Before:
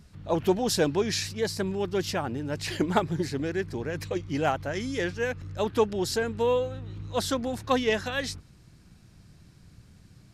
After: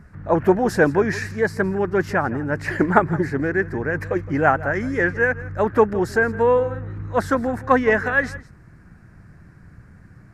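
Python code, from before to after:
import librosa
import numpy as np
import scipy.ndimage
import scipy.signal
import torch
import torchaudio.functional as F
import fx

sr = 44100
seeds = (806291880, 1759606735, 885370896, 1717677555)

y = fx.high_shelf_res(x, sr, hz=2400.0, db=-12.0, q=3.0)
y = y + 10.0 ** (-18.0 / 20.0) * np.pad(y, (int(165 * sr / 1000.0), 0))[:len(y)]
y = F.gain(torch.from_numpy(y), 7.0).numpy()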